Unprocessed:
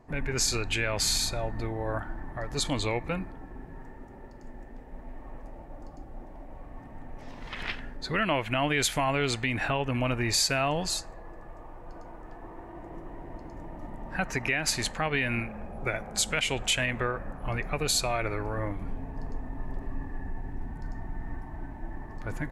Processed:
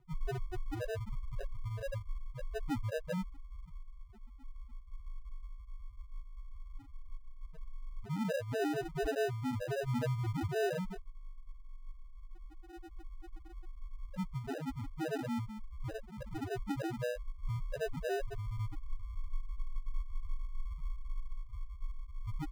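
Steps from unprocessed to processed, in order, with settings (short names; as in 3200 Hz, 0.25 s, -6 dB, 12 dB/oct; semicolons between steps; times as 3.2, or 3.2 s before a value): loudest bins only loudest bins 1; sample-and-hold 40×; high shelf 2800 Hz -10 dB; gain +4 dB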